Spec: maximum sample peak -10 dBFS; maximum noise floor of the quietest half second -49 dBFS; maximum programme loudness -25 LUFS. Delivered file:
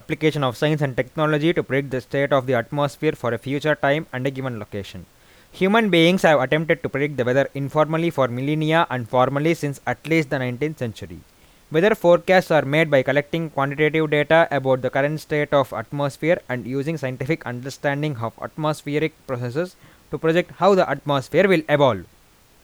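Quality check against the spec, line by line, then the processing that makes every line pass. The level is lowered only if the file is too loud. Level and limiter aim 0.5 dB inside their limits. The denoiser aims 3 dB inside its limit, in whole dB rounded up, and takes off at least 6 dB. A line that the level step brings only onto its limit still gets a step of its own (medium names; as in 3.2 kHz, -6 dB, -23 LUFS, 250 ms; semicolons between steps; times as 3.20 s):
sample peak -4.5 dBFS: fail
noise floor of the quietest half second -54 dBFS: pass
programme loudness -20.5 LUFS: fail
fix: trim -5 dB; peak limiter -10.5 dBFS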